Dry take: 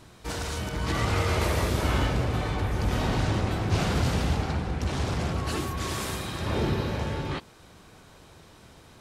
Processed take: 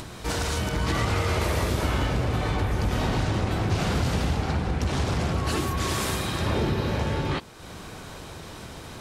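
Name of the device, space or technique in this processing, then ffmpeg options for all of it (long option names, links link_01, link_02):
upward and downward compression: -af "acompressor=mode=upward:threshold=-37dB:ratio=2.5,acompressor=threshold=-27dB:ratio=4,volume=5.5dB"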